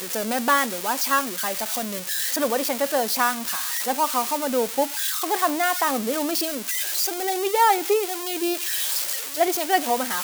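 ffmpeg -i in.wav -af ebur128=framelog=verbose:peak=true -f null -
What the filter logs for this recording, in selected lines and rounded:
Integrated loudness:
  I:         -22.6 LUFS
  Threshold: -32.6 LUFS
Loudness range:
  LRA:         1.1 LU
  Threshold: -42.6 LUFS
  LRA low:   -23.1 LUFS
  LRA high:  -22.0 LUFS
True peak:
  Peak:       -7.6 dBFS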